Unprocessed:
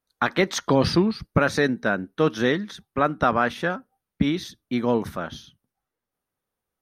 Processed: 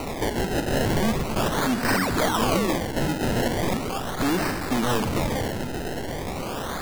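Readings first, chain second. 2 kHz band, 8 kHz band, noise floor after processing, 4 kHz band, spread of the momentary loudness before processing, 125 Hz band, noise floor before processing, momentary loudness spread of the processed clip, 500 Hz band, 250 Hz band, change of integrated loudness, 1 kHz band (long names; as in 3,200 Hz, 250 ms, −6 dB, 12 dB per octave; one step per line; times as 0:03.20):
−1.5 dB, +6.0 dB, −31 dBFS, +2.0 dB, 11 LU, +1.5 dB, below −85 dBFS, 8 LU, −1.5 dB, −0.5 dB, −1.5 dB, 0.0 dB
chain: converter with a step at zero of −30 dBFS
parametric band 1,900 Hz +7.5 dB 1.5 octaves
in parallel at −1 dB: downward compressor, threshold −24 dBFS, peak gain reduction 12.5 dB
on the sum: wave folding −17 dBFS
sound drawn into the spectrogram fall, 0:01.88–0:02.75, 270–8,100 Hz −25 dBFS
on a send: echo machine with several playback heads 114 ms, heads first and second, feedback 63%, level −14 dB
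on the sum: sample-and-hold swept by an LFO 26×, swing 100% 0.39 Hz
level −1.5 dB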